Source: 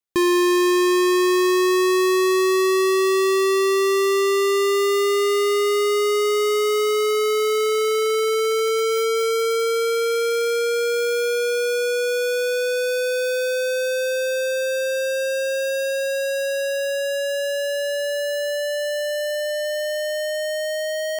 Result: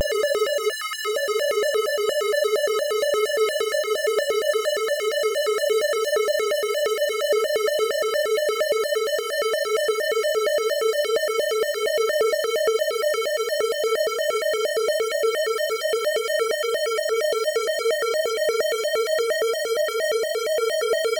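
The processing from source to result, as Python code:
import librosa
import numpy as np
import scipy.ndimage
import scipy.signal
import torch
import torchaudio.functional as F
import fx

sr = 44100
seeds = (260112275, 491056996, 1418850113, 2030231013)

y = fx.paulstretch(x, sr, seeds[0], factor=8.4, window_s=0.05, from_s=13.17)
y = fx.spec_erase(y, sr, start_s=0.71, length_s=0.35, low_hz=340.0, high_hz=1400.0)
y = fx.vibrato_shape(y, sr, shape='square', rate_hz=4.3, depth_cents=250.0)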